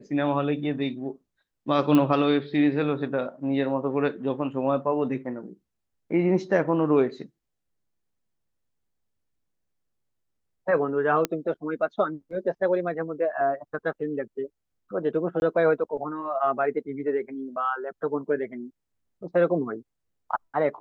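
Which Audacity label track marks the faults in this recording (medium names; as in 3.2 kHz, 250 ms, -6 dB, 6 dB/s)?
1.950000	1.950000	pop -11 dBFS
11.250000	11.250000	pop -10 dBFS
15.400000	15.420000	dropout 21 ms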